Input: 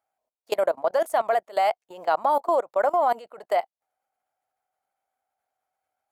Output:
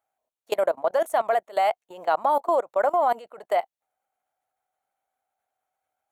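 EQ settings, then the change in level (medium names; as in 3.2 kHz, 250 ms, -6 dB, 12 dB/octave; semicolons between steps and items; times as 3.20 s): band-stop 4.9 kHz, Q 5; 0.0 dB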